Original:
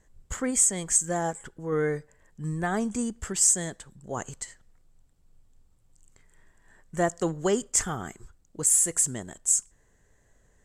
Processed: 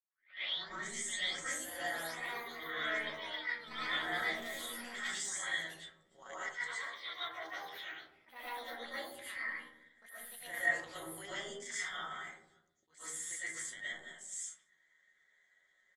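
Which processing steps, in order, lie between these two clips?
tape start-up on the opening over 0.59 s; comb 5.4 ms, depth 36%; peak limiter -16 dBFS, peak gain reduction 7 dB; ever faster or slower copies 609 ms, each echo +6 st, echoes 3; two resonant band-passes 2.6 kHz, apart 0.78 oct; AM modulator 220 Hz, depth 50%; granular stretch 1.5×, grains 75 ms; algorithmic reverb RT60 0.83 s, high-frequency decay 0.25×, pre-delay 75 ms, DRR -10 dB; attacks held to a fixed rise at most 210 dB/s

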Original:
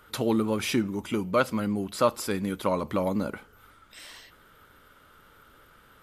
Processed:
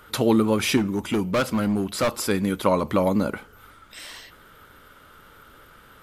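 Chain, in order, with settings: 0.77–2.18 s: hard clipper -24 dBFS, distortion -10 dB; trim +6 dB

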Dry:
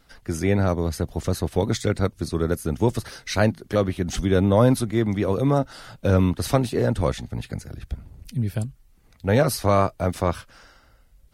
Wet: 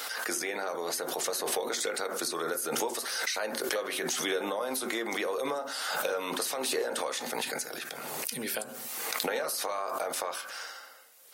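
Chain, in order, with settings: Bessel high-pass 650 Hz, order 4; treble shelf 5.7 kHz +8 dB; peak limiter -19.5 dBFS, peak gain reduction 10 dB; compression 6:1, threshold -40 dBFS, peak gain reduction 14.5 dB; reverberation RT60 0.45 s, pre-delay 3 ms, DRR 7 dB; swell ahead of each attack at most 25 dB/s; trim +8.5 dB

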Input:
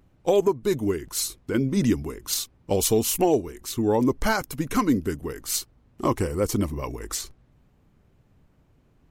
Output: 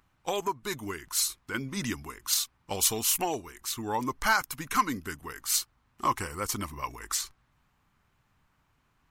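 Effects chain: resonant low shelf 730 Hz -11.5 dB, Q 1.5

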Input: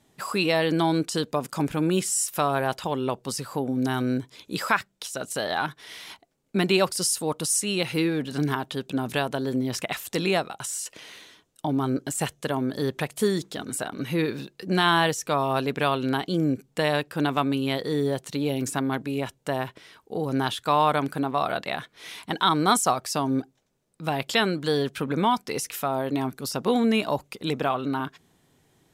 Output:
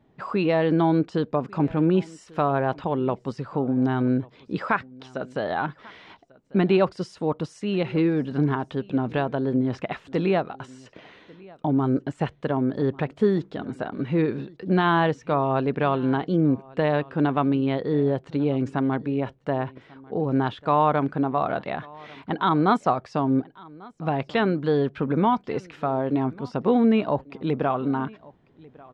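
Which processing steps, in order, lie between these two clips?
tape spacing loss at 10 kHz 42 dB; delay 1144 ms -23.5 dB; trim +4.5 dB

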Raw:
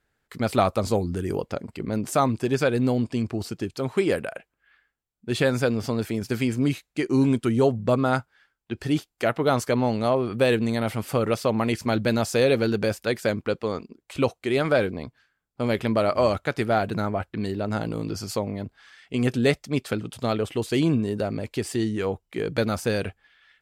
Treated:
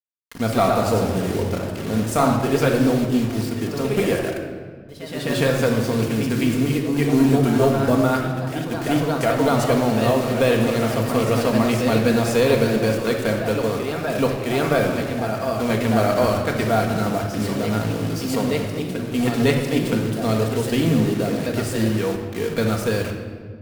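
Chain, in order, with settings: word length cut 6-bit, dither none; ever faster or slower copies 150 ms, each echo +1 st, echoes 3, each echo -6 dB; Chebyshev shaper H 4 -23 dB, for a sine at -6 dBFS; simulated room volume 2000 m³, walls mixed, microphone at 1.7 m

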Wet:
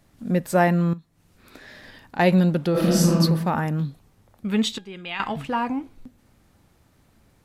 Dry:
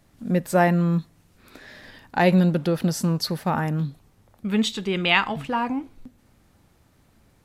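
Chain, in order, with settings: 0.93–2.19 s: compression 16:1, threshold -36 dBFS, peak gain reduction 17 dB; 2.71–3.18 s: reverb throw, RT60 0.89 s, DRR -6.5 dB; 4.78–5.20 s: feedback comb 820 Hz, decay 0.34 s, mix 80%

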